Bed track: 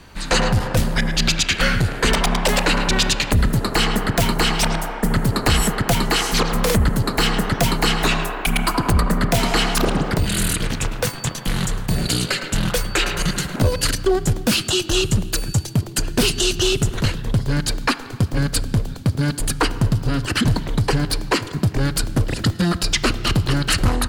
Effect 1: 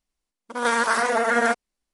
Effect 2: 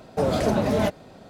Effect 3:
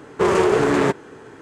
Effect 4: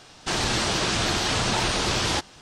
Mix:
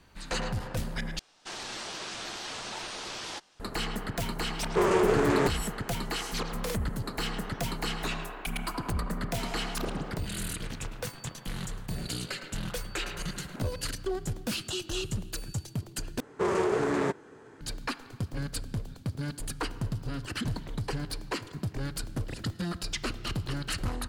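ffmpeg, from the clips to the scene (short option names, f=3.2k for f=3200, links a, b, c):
-filter_complex "[3:a]asplit=2[a][b];[0:a]volume=-14.5dB[c];[4:a]equalizer=f=67:w=0.39:g=-15[d];[b]equalizer=f=2.9k:w=2.4:g=-3[e];[c]asplit=3[f][g][h];[f]atrim=end=1.194[i];[d]atrim=end=2.41,asetpts=PTS-STARTPTS,volume=-13dB[j];[g]atrim=start=3.596:end=16.204[k];[e]atrim=end=1.41,asetpts=PTS-STARTPTS,volume=-10dB[l];[h]atrim=start=17.606[m];[a]atrim=end=1.41,asetpts=PTS-STARTPTS,volume=-7dB,afade=t=in:d=0.004:c=hsin,afade=t=out:st=1.406:d=0.004:c=hsin,adelay=4560[n];[i][j]acrossfade=d=0.004:c1=hsin:c2=hsin[o];[o][k]acrossfade=d=0.004:c1=hsin:c2=hsin[p];[p][l]acrossfade=d=0.004:c1=hsin:c2=hsin[q];[q][m]acrossfade=d=0.004:c1=hsin:c2=hsin[r];[r][n]amix=inputs=2:normalize=0"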